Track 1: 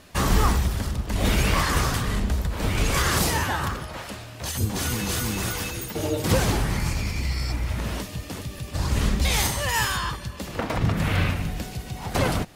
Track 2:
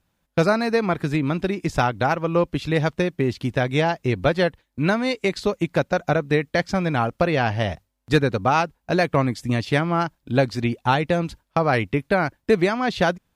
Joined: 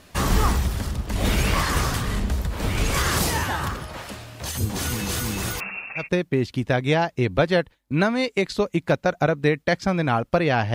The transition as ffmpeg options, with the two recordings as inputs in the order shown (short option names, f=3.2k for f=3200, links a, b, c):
-filter_complex "[0:a]asettb=1/sr,asplit=3[a][b][c];[a]atrim=end=5.604[d];[b]atrim=start=5.6:end=6.09,asetpts=PTS-STARTPTS,afade=t=in:d=0.004:c=qsin,afade=t=out:st=0.486:d=0.004:c=qsin,lowpass=f=2.4k:t=q:w=0.5098,lowpass=f=2.4k:t=q:w=0.6013,lowpass=f=2.4k:t=q:w=0.9,lowpass=f=2.4k:t=q:w=2.563,afreqshift=-2800[e];[c]atrim=start=6.086[f];[d][e]acrossfade=d=0.004:c1=hsin:c2=qsin[g];[g][f]acrossfade=d=0.004:c1=qsin:c2=hsin,apad=whole_dur=10.74,atrim=end=10.74,atrim=end=6.09,asetpts=PTS-STARTPTS[h];[1:a]atrim=start=2.82:end=7.61,asetpts=PTS-STARTPTS[i];[h][i]acrossfade=d=0.14:c1=tri:c2=tri"